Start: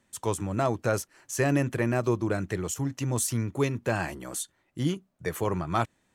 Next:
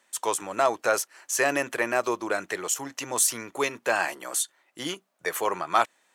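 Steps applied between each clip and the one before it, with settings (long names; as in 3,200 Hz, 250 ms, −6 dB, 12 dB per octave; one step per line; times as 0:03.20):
high-pass filter 620 Hz 12 dB per octave
level +7 dB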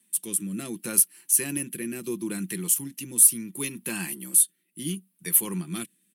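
drawn EQ curve 120 Hz 0 dB, 190 Hz +13 dB, 370 Hz −6 dB, 640 Hz −28 dB, 940 Hz −18 dB, 1,300 Hz −20 dB, 2,800 Hz −5 dB, 6,900 Hz −8 dB, 10,000 Hz +15 dB, 15,000 Hz +10 dB
rotating-speaker cabinet horn 0.7 Hz
comb filter 5.8 ms, depth 30%
level +3.5 dB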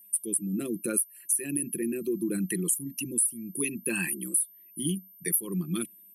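spectral envelope exaggerated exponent 2
downward compressor 6 to 1, threshold −27 dBFS, peak gain reduction 15 dB
steady tone 13,000 Hz −54 dBFS
level +3 dB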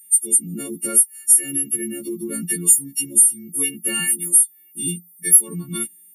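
every partial snapped to a pitch grid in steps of 4 semitones
level +1 dB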